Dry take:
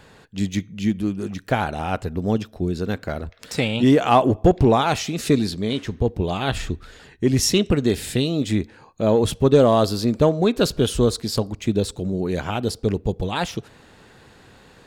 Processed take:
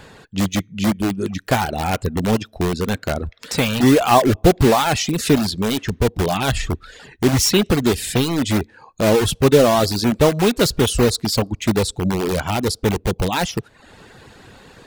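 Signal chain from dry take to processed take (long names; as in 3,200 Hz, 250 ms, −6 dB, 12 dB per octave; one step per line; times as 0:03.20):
in parallel at −4 dB: wrap-around overflow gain 18 dB
on the sum: reverb reduction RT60 0.63 s
level +2.5 dB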